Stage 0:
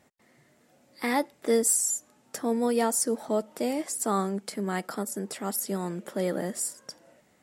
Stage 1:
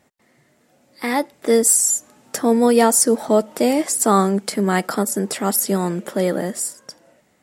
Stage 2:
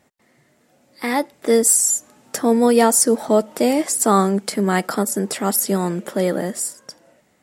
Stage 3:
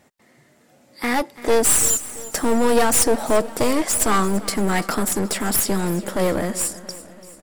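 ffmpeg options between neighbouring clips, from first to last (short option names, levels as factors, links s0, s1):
-af "dynaudnorm=f=340:g=9:m=2.99,volume=1.41"
-af anull
-af "aeval=exprs='clip(val(0),-1,0.0531)':c=same,aeval=exprs='0.794*(cos(1*acos(clip(val(0)/0.794,-1,1)))-cos(1*PI/2))+0.0708*(cos(5*acos(clip(val(0)/0.794,-1,1)))-cos(5*PI/2))':c=same,aecho=1:1:338|676|1014|1352|1690:0.133|0.0773|0.0449|0.026|0.0151"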